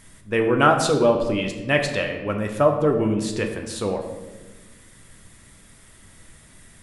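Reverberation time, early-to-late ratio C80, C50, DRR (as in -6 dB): 1.3 s, 9.0 dB, 7.0 dB, 3.0 dB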